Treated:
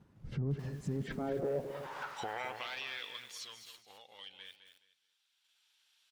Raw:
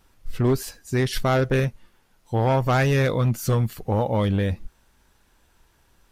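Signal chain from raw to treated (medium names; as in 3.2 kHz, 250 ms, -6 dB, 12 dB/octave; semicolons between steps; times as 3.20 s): recorder AGC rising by 9.6 dB/s; Doppler pass-by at 2.02 s, 17 m/s, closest 1.3 m; high-pass sweep 150 Hz -> 3.4 kHz, 0.81–2.72 s; in parallel at +0.5 dB: level held to a coarse grid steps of 10 dB; on the sum: tilt EQ -3.5 dB/octave; peak limiter -44 dBFS, peak gain reduction 24.5 dB; low-pass that closes with the level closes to 1.2 kHz, closed at -48 dBFS; feedback delay 211 ms, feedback 26%, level -10 dB; bit-crushed delay 267 ms, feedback 35%, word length 11-bit, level -12 dB; trim +16 dB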